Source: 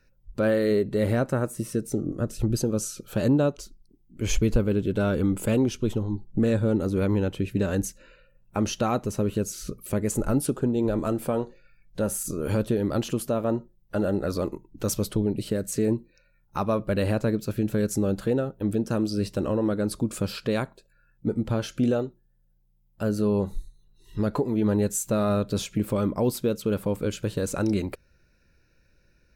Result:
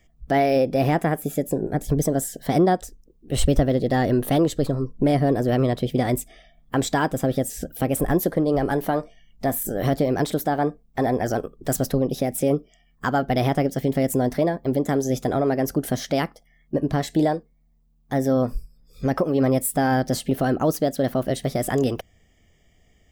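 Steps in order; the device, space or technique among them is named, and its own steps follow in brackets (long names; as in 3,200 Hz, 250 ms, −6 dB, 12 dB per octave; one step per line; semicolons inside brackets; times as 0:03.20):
nightcore (speed change +27%)
level +3.5 dB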